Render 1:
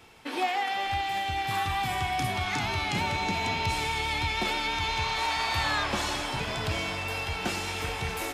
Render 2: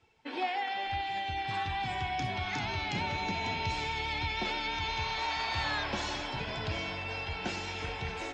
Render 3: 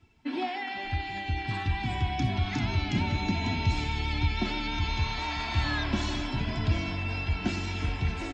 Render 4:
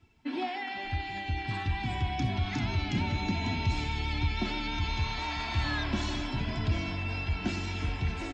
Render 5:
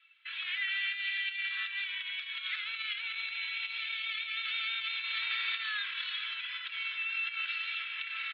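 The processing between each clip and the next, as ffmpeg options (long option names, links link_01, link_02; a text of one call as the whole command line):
ffmpeg -i in.wav -af "lowpass=frequency=7400:width=0.5412,lowpass=frequency=7400:width=1.3066,afftdn=noise_reduction=12:noise_floor=-45,bandreject=frequency=1200:width=9.1,volume=-4.5dB" out.wav
ffmpeg -i in.wav -af "lowshelf=frequency=320:width_type=q:width=1.5:gain=10.5,aecho=1:1:3:0.45" out.wav
ffmpeg -i in.wav -af "asoftclip=type=tanh:threshold=-15.5dB,volume=-1.5dB" out.wav
ffmpeg -i in.wav -af "alimiter=level_in=5.5dB:limit=-24dB:level=0:latency=1:release=51,volume=-5.5dB,asuperpass=centerf=2200:order=12:qfactor=0.82,equalizer=frequency=3100:width=0.64:gain=10" out.wav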